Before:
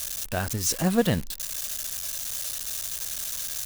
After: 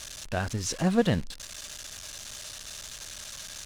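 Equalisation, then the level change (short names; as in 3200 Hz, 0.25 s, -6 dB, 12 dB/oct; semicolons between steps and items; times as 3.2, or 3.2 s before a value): air absorption 74 m; -1.0 dB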